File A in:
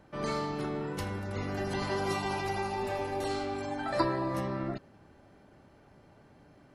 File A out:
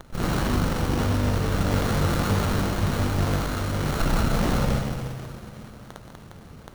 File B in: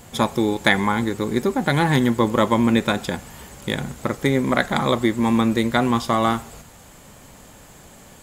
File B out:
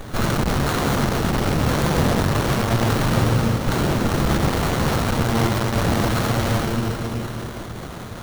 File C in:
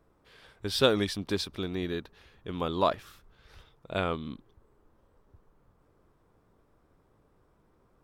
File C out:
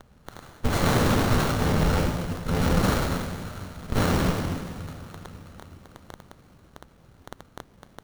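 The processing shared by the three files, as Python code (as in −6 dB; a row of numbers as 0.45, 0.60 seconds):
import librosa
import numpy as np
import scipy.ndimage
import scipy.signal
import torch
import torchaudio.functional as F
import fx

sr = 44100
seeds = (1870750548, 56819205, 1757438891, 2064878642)

p1 = fx.bit_reversed(x, sr, seeds[0], block=128)
p2 = fx.high_shelf(p1, sr, hz=3900.0, db=10.0)
p3 = p2 + fx.echo_thinned(p2, sr, ms=185, feedback_pct=79, hz=420.0, wet_db=-20.0, dry=0)
p4 = fx.rev_plate(p3, sr, seeds[1], rt60_s=3.7, hf_ratio=0.4, predelay_ms=0, drr_db=-4.0)
p5 = np.clip(p4, -10.0 ** (-14.5 / 20.0), 10.0 ** (-14.5 / 20.0))
p6 = scipy.signal.sosfilt(scipy.signal.butter(4, 57.0, 'highpass', fs=sr, output='sos'), p5)
p7 = fx.peak_eq(p6, sr, hz=13000.0, db=-8.0, octaves=1.1)
p8 = fx.env_phaser(p7, sr, low_hz=600.0, high_hz=2200.0, full_db=-21.5)
p9 = fx.dmg_crackle(p8, sr, seeds[2], per_s=12.0, level_db=-32.0)
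p10 = fx.running_max(p9, sr, window=17)
y = p10 * librosa.db_to_amplitude(7.0)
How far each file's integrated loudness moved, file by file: +8.5, −0.5, +5.5 LU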